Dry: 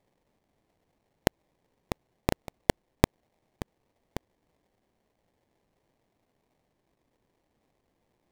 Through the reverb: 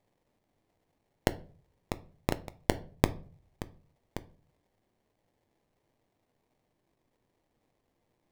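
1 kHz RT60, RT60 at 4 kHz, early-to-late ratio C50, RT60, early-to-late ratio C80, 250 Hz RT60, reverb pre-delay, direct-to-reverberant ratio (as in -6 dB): 0.40 s, 0.30 s, 20.0 dB, 0.40 s, 25.0 dB, 0.55 s, 6 ms, 12.0 dB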